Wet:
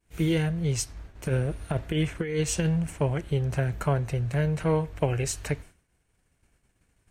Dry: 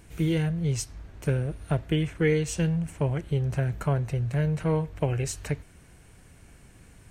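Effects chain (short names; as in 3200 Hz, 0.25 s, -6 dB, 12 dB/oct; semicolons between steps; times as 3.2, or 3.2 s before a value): expander -39 dBFS; bell 140 Hz -3.5 dB 2.4 oct; 1.15–3.01 negative-ratio compressor -27 dBFS, ratio -0.5; gain +3 dB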